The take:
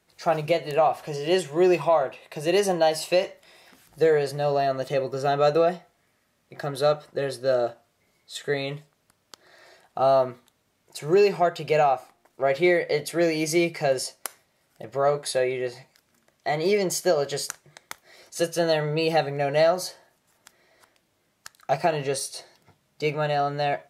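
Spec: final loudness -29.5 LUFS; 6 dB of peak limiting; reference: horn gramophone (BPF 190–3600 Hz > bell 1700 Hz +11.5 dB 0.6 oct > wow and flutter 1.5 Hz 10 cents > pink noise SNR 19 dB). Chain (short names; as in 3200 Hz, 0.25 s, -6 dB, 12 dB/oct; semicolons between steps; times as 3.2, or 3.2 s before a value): limiter -15.5 dBFS; BPF 190–3600 Hz; bell 1700 Hz +11.5 dB 0.6 oct; wow and flutter 1.5 Hz 10 cents; pink noise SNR 19 dB; gain -4 dB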